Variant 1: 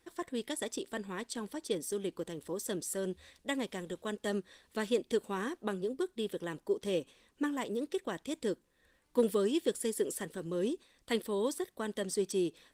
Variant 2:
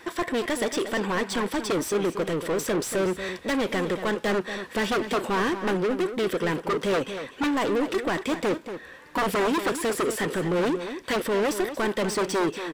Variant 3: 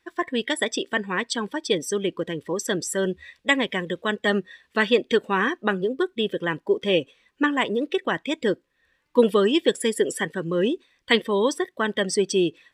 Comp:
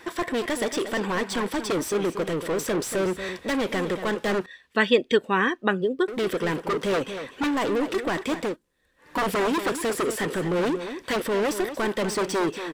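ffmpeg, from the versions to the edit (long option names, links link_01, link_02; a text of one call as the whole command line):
ffmpeg -i take0.wav -i take1.wav -i take2.wav -filter_complex "[1:a]asplit=3[link_01][link_02][link_03];[link_01]atrim=end=4.462[link_04];[2:a]atrim=start=4.458:end=6.082[link_05];[link_02]atrim=start=6.078:end=8.57[link_06];[0:a]atrim=start=8.41:end=9.12[link_07];[link_03]atrim=start=8.96[link_08];[link_04][link_05]acrossfade=duration=0.004:curve1=hsin:curve2=hsin[link_09];[link_09][link_06]acrossfade=duration=0.004:curve1=hsin:curve2=hsin[link_10];[link_10][link_07]acrossfade=duration=0.16:curve1=tri:curve2=tri[link_11];[link_11][link_08]acrossfade=duration=0.16:curve1=tri:curve2=tri" out.wav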